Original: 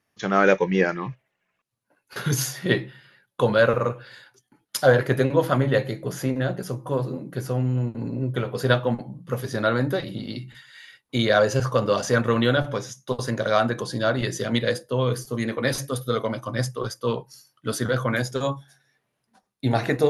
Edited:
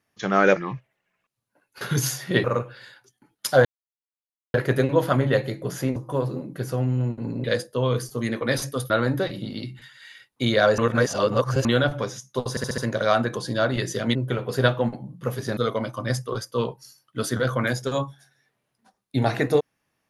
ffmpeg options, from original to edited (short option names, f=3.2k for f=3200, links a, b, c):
-filter_complex "[0:a]asplit=15[a][b][c][d][e][f][g][h][i][j][k][l][m][n][o];[a]atrim=end=0.562[p];[b]atrim=start=0.908:end=2.792[q];[c]atrim=start=3.738:end=4.95,asetpts=PTS-STARTPTS,afade=t=out:st=1.208:d=0.004:c=hsin,apad=pad_dur=0.89[r];[d]atrim=start=4.95:end=6.372,asetpts=PTS-STARTPTS,afade=t=in:d=0.004:c=hsin[s];[e]atrim=start=6.728:end=8.212[t];[f]atrim=start=14.598:end=16.062[u];[g]atrim=start=9.628:end=11.512[v];[h]atrim=start=11.508:end=12.382,asetpts=PTS-STARTPTS,areverse[w];[i]atrim=start=12.378:end=13.302[x];[j]atrim=start=13.228:end=13.302[y];[k]atrim=start=13.228:end=13.302[z];[l]atrim=start=13.228:end=13.302[aa];[m]atrim=start=13.228:end=14.602[ab];[n]atrim=start=8.208:end=9.632[ac];[o]atrim=start=16.058[ad];[p][q]acrossfade=d=0.004:c1=hsin:c2=hsin[ae];[r][s]concat=n=2:v=0:a=1[af];[ae][af]acrossfade=d=0.004:c1=hsin:c2=hsin[ag];[ag][t]acrossfade=d=0.004:c1=hsin:c2=hsin[ah];[ah][u]acrossfade=d=0.004:c1=hsin:c2=hsin[ai];[ai][v]acrossfade=d=0.004:c1=hsin:c2=hsin[aj];[aj][w]acrossfade=d=0.004:c1=hsin:c2=hsin[ak];[ak][x]acrossfade=d=0.004:c1=hsin:c2=hsin[al];[al][y]acrossfade=d=0.004:c1=hsin:c2=hsin[am];[am][z]acrossfade=d=0.004:c1=hsin:c2=hsin[an];[an][aa]acrossfade=d=0.004:c1=hsin:c2=hsin[ao];[ao][ab]acrossfade=d=0.004:c1=hsin:c2=hsin[ap];[ap][ac]acrossfade=d=0.004:c1=hsin:c2=hsin[aq];[aq][ad]acrossfade=d=0.004:c1=hsin:c2=hsin"